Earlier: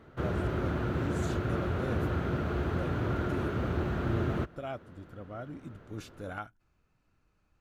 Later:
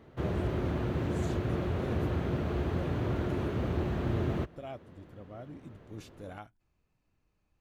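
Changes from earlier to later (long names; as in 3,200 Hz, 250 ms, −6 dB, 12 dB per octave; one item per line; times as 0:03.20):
speech −3.5 dB
master: add parametric band 1,400 Hz −9 dB 0.35 octaves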